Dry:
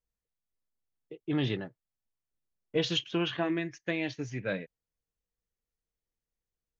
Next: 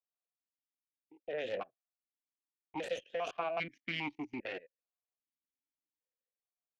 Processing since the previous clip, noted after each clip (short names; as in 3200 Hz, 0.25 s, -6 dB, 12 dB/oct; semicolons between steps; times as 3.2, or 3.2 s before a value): level quantiser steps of 19 dB; added harmonics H 3 -7 dB, 4 -11 dB, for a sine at -25.5 dBFS; vowel sequencer 2.5 Hz; gain +16.5 dB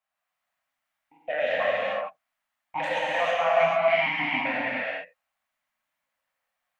EQ curve 270 Hz 0 dB, 380 Hz -21 dB, 590 Hz +10 dB, 1900 Hz +12 dB, 5000 Hz -3 dB; limiter -24 dBFS, peak gain reduction 11 dB; non-linear reverb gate 0.48 s flat, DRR -7 dB; gain +3 dB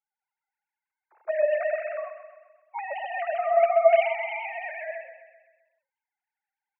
sine-wave speech; on a send: feedback echo 0.129 s, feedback 53%, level -10 dB